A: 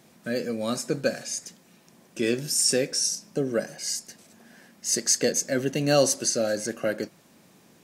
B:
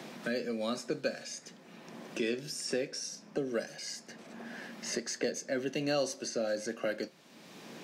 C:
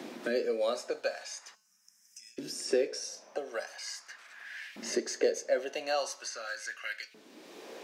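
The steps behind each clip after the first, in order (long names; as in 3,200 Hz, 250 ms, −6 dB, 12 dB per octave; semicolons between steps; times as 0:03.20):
three-way crossover with the lows and the highs turned down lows −16 dB, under 160 Hz, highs −14 dB, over 5,200 Hz; tuned comb filter 76 Hz, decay 0.21 s, mix 40%; multiband upward and downward compressor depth 70%; level −4.5 dB
gain on a spectral selection 0:01.55–0:02.38, 220–5,000 Hz −29 dB; hum removal 216.2 Hz, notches 32; auto-filter high-pass saw up 0.42 Hz 260–2,400 Hz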